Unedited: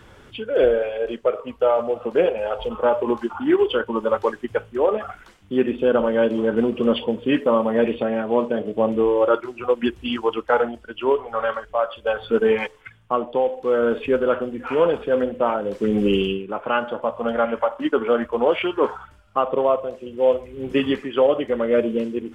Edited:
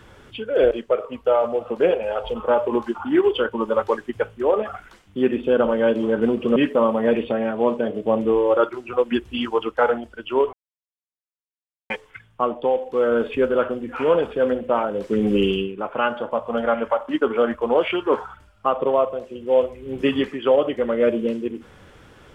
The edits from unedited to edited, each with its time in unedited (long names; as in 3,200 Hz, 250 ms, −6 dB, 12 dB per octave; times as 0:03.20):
0:00.71–0:01.06: remove
0:06.91–0:07.27: remove
0:11.24–0:12.61: silence